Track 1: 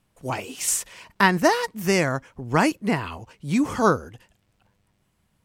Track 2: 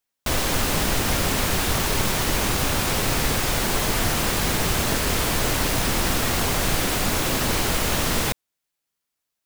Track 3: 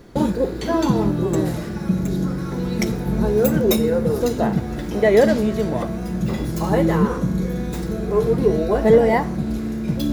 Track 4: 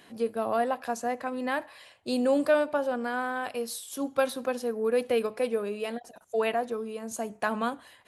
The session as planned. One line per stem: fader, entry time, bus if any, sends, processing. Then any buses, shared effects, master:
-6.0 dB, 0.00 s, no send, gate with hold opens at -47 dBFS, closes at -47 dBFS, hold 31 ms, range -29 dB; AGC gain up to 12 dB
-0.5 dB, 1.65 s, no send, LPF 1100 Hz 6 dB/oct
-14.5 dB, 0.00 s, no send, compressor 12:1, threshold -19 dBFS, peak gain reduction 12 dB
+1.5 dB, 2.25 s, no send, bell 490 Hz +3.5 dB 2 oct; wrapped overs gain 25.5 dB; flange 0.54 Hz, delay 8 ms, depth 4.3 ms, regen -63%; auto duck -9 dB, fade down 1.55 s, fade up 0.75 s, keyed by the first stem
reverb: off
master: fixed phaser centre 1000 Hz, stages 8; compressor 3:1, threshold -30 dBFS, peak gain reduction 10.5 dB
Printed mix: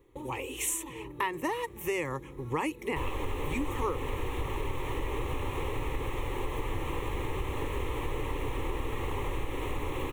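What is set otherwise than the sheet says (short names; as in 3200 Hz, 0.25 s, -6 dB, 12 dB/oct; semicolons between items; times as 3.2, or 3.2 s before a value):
stem 2: entry 1.65 s -> 2.70 s; stem 4: muted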